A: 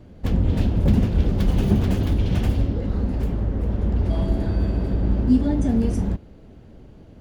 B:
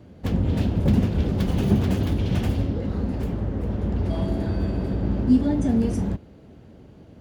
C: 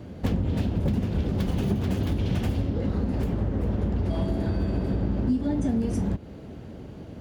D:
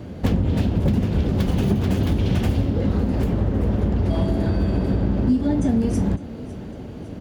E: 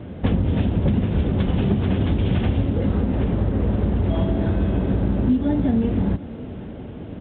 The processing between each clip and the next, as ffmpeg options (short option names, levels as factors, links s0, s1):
-af "highpass=74"
-af "acompressor=threshold=0.0355:ratio=6,volume=2.11"
-af "aecho=1:1:555|1110|1665|2220|2775:0.126|0.0718|0.0409|0.0233|0.0133,volume=1.88"
-ar 8000 -c:a pcm_mulaw